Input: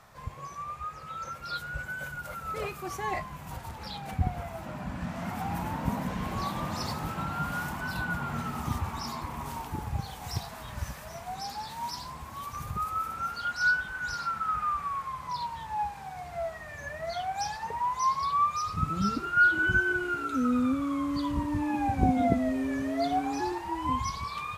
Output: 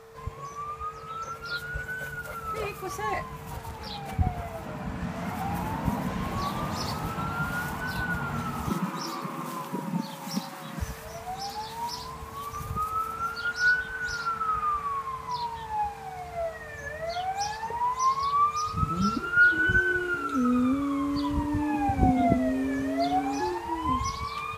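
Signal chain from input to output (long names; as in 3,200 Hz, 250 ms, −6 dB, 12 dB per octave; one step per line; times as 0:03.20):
steady tone 450 Hz −50 dBFS
0:08.70–0:10.80: frequency shifter +100 Hz
level +2 dB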